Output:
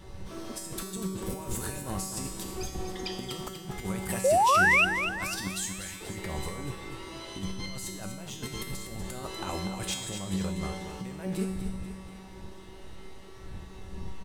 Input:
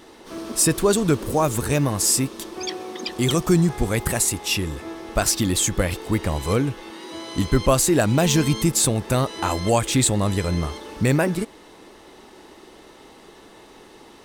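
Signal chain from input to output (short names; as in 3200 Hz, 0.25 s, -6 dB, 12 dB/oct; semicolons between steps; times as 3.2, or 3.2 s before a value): wind noise 82 Hz -34 dBFS; 5.47–6.01 passive tone stack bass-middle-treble 5-5-5; negative-ratio compressor -24 dBFS, ratio -0.5; resonator 190 Hz, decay 1 s, mix 90%; 4.24–4.85 painted sound rise 500–2900 Hz -27 dBFS; feedback echo 0.243 s, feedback 50%, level -9 dB; gain +5.5 dB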